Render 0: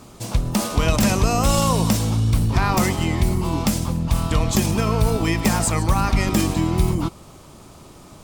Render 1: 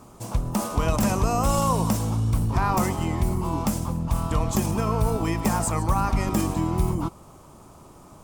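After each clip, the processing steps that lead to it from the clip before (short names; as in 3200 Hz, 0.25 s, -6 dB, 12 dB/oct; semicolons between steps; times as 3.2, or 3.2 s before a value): graphic EQ 1000/2000/4000 Hz +5/-4/-7 dB; gain -4.5 dB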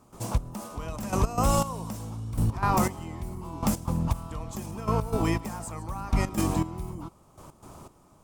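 in parallel at -3 dB: limiter -21 dBFS, peak gain reduction 11 dB; on the sum: step gate ".xx......x" 120 bpm -12 dB; gain -3 dB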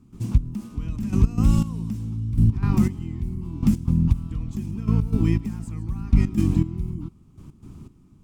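EQ curve 250 Hz 0 dB, 400 Hz -11 dB, 580 Hz -27 dB, 2500 Hz -11 dB, 9600 Hz -19 dB; gain +8 dB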